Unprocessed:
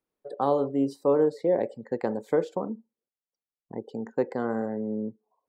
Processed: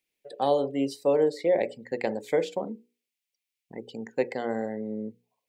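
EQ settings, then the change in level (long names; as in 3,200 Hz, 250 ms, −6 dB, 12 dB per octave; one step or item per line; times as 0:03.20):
high shelf with overshoot 1,700 Hz +10.5 dB, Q 3
dynamic equaliser 690 Hz, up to +7 dB, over −37 dBFS, Q 1.1
mains-hum notches 60/120/180/240/300/360/420/480 Hz
−3.0 dB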